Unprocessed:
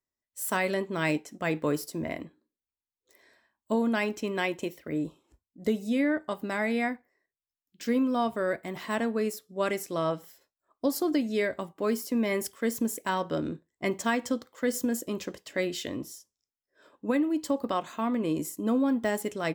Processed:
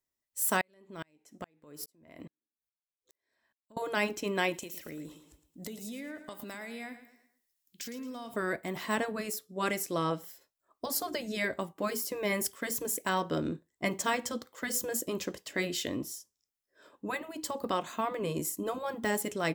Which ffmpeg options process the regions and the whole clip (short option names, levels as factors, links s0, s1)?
-filter_complex "[0:a]asettb=1/sr,asplit=3[s0][s1][s2];[s0]atrim=end=0.614[s3];[s1]atrim=start=0.61:end=3.77,asetpts=PTS-STARTPTS,afade=t=in:d=0.004:c=qsin,afade=t=out:st=3.156:d=0.004:c=qsin,acompressor=threshold=0.0224:ratio=10:attack=3.2:release=140:knee=1:detection=peak,aeval=exprs='val(0)*pow(10,-38*if(lt(mod(-2.4*n/s,1),2*abs(-2.4)/1000),1-mod(-2.4*n/s,1)/(2*abs(-2.4)/1000),(mod(-2.4*n/s,1)-2*abs(-2.4)/1000)/(1-2*abs(-2.4)/1000))/20)':c=same[s4];[s2]atrim=start=3.766[s5];[s3][s4]acrossfade=d=0.004:c1=hsin:c2=qsin[s6];[s6][s5]acrossfade=d=0.004:c1=qsin:c2=hsin,asettb=1/sr,asplit=3[s7][s8][s9];[s7]atrim=end=4.544[s10];[s8]atrim=start=4.54:end=8.34,asetpts=PTS-STARTPTS,afade=t=in:d=0.004:c=qsin,afade=t=out:st=3.796:d=0.004:c=qsin,highshelf=f=2600:g=10.5,acompressor=threshold=0.01:ratio=6:attack=3.2:release=140:knee=1:detection=peak,aecho=1:1:111|222|333|444:0.251|0.1|0.0402|0.0161,atrim=end_sample=167580[s11];[s9]atrim=start=8.336[s12];[s10][s11]acrossfade=d=0.004:c1=hsin:c2=qsin[s13];[s13][s12]acrossfade=d=0.004:c1=qsin:c2=hsin,afftfilt=real='re*lt(hypot(re,im),0.316)':imag='im*lt(hypot(re,im),0.316)':win_size=1024:overlap=0.75,highshelf=f=6100:g=5"